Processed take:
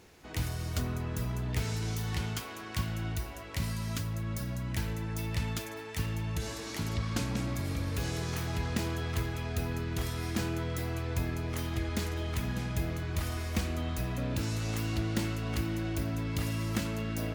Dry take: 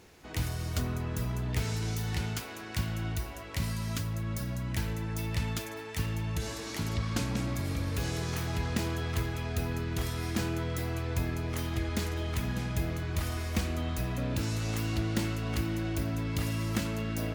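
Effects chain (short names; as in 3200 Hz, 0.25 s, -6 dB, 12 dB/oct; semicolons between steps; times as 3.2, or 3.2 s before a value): 1.9–2.82 small resonant body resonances 1100/3200 Hz, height 8 dB; gain -1 dB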